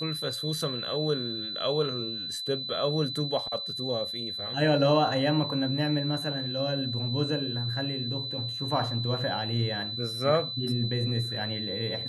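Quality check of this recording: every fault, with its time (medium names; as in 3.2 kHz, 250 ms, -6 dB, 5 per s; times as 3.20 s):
whine 4 kHz -33 dBFS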